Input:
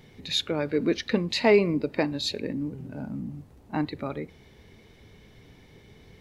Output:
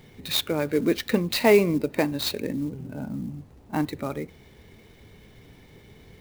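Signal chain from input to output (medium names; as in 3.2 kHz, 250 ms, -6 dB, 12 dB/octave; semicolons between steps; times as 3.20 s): sampling jitter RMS 0.021 ms; trim +2 dB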